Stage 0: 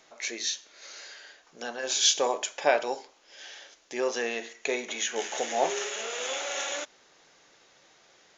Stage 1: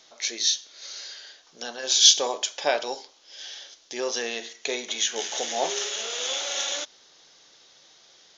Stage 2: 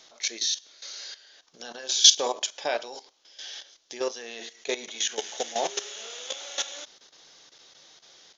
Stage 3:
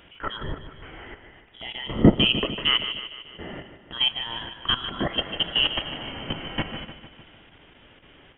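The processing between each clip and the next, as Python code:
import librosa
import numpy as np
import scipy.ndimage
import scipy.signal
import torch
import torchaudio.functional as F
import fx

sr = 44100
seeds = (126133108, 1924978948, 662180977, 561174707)

y1 = fx.band_shelf(x, sr, hz=4400.0, db=9.5, octaves=1.2)
y1 = y1 * 10.0 ** (-1.0 / 20.0)
y2 = fx.level_steps(y1, sr, step_db=14)
y2 = y2 * 10.0 ** (2.0 / 20.0)
y3 = fx.freq_invert(y2, sr, carrier_hz=3600)
y3 = fx.echo_feedback(y3, sr, ms=150, feedback_pct=57, wet_db=-11.0)
y3 = y3 * 10.0 ** (6.0 / 20.0)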